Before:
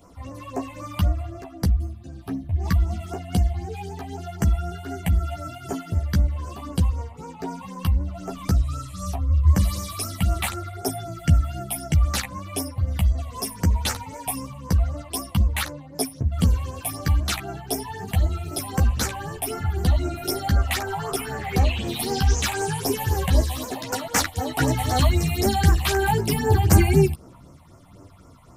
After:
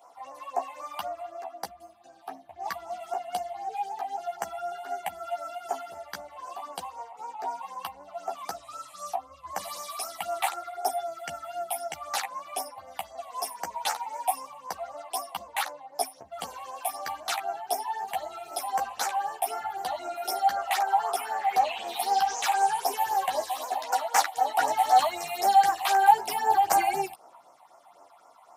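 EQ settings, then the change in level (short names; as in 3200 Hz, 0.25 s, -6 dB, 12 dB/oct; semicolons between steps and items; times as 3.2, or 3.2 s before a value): resonant high-pass 770 Hz, resonance Q 4.9; -5.5 dB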